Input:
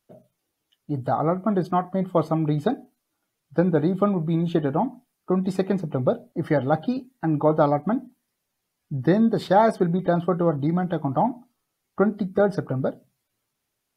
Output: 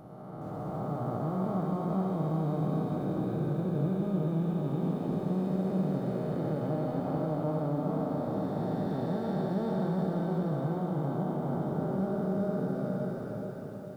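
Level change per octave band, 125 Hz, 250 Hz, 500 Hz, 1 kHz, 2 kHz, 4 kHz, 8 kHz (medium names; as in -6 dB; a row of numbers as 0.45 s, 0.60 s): -4.0 dB, -6.0 dB, -9.5 dB, -11.5 dB, -13.5 dB, under -10 dB, no reading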